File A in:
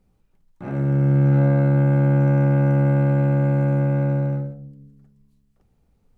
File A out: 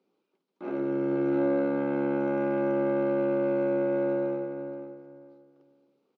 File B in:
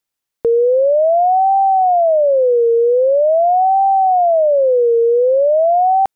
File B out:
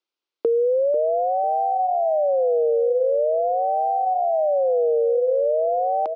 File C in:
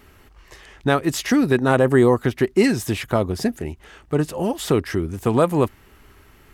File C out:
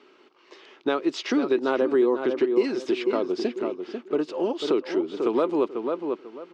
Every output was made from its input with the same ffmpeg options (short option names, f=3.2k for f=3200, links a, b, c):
-filter_complex "[0:a]highpass=f=280:w=0.5412,highpass=f=280:w=1.3066,equalizer=f=360:t=q:w=4:g=6,equalizer=f=740:t=q:w=4:g=-5,equalizer=f=1.8k:t=q:w=4:g=-9,lowpass=f=4.9k:w=0.5412,lowpass=f=4.9k:w=1.3066,asplit=2[a][b];[b]adelay=493,lowpass=f=2.5k:p=1,volume=-8dB,asplit=2[c][d];[d]adelay=493,lowpass=f=2.5k:p=1,volume=0.24,asplit=2[e][f];[f]adelay=493,lowpass=f=2.5k:p=1,volume=0.24[g];[a][c][e][g]amix=inputs=4:normalize=0,acompressor=threshold=-19dB:ratio=2.5,volume=-1.5dB"